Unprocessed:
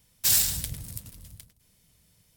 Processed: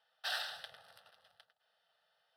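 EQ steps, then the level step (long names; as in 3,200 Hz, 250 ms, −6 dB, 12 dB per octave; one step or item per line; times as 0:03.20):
four-pole ladder band-pass 1,000 Hz, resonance 45%
tilt shelving filter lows −4.5 dB, about 840 Hz
phaser with its sweep stopped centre 1,500 Hz, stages 8
+13.5 dB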